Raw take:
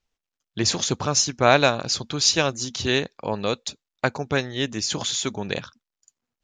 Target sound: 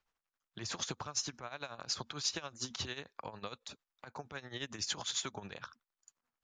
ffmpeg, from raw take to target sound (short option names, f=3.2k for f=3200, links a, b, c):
-filter_complex "[0:a]equalizer=f=1.2k:t=o:w=1.8:g=11.5,acompressor=threshold=-27dB:ratio=2.5,alimiter=limit=-17dB:level=0:latency=1:release=138,acrossover=split=120|3000[a][b][c];[b]acompressor=threshold=-33dB:ratio=6[d];[a][d][c]amix=inputs=3:normalize=0,tremolo=f=11:d=0.75,volume=-4.5dB"